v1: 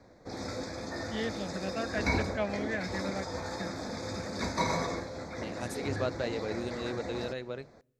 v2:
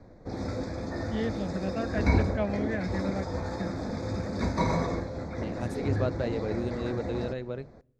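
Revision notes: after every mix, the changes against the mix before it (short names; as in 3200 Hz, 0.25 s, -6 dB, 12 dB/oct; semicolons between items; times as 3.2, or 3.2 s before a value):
background: send +6.5 dB; master: add tilt -2.5 dB/oct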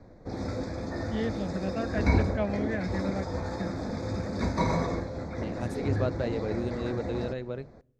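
none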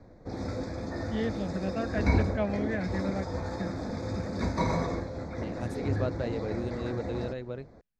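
reverb: off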